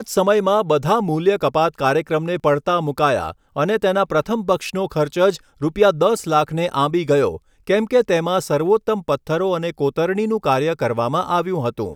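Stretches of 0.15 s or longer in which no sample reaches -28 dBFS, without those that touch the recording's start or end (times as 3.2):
3.31–3.57
5.36–5.62
7.37–7.67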